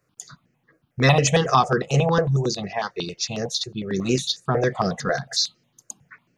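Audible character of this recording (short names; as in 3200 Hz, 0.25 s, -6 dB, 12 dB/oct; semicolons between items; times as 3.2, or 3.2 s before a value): notches that jump at a steady rate 11 Hz 880–3600 Hz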